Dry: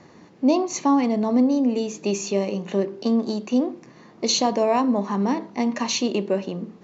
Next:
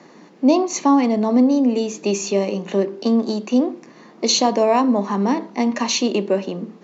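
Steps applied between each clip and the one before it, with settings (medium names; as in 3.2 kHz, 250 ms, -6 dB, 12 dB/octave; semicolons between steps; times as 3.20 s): high-pass 180 Hz 24 dB/octave; trim +4 dB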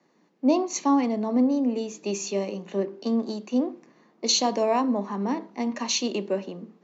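three bands expanded up and down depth 40%; trim -7.5 dB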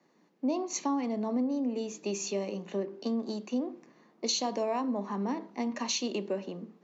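compression 2.5:1, threshold -27 dBFS, peak gain reduction 8 dB; trim -2.5 dB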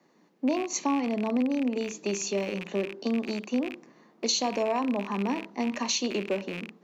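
rattle on loud lows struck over -48 dBFS, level -30 dBFS; trim +3.5 dB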